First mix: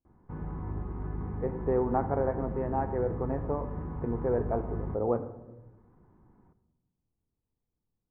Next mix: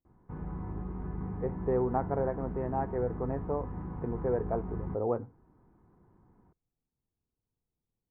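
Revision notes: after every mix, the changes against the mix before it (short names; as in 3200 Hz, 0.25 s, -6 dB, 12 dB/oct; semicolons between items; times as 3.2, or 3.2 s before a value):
reverb: off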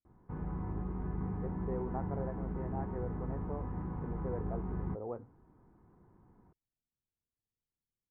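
speech -10.5 dB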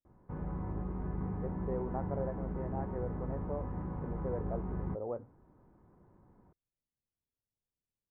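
master: add bell 570 Hz +8.5 dB 0.25 oct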